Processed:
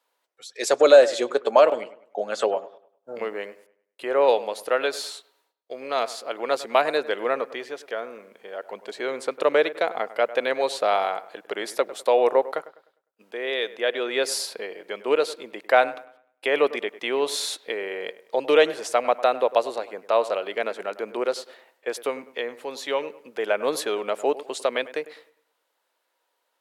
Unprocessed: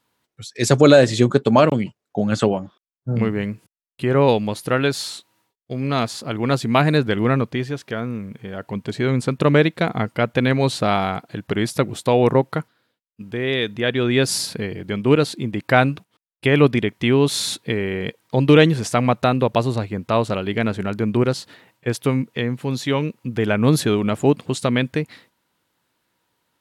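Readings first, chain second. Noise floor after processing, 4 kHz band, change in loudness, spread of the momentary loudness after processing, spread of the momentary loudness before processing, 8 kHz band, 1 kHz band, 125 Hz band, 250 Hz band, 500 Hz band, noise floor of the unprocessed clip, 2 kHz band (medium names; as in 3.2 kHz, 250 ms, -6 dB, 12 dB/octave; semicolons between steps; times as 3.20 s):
-75 dBFS, -4.5 dB, -4.5 dB, 15 LU, 12 LU, -5.0 dB, -2.0 dB, under -35 dB, -17.0 dB, -2.0 dB, -82 dBFS, -4.0 dB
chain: ladder high-pass 440 Hz, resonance 40%; on a send: feedback echo behind a low-pass 101 ms, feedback 34%, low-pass 2.3 kHz, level -16 dB; on the sum: trim +3.5 dB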